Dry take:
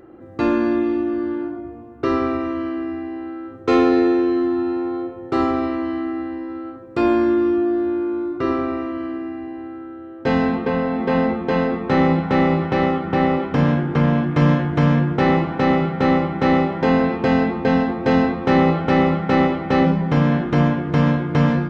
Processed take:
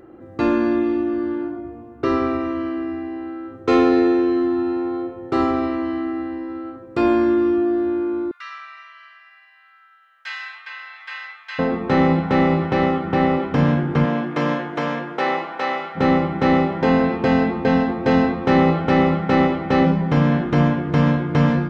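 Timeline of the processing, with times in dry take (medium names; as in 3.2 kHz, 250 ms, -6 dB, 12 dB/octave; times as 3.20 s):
8.31–11.59 s: inverse Chebyshev high-pass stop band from 340 Hz, stop band 70 dB
14.04–15.95 s: high-pass 230 Hz -> 820 Hz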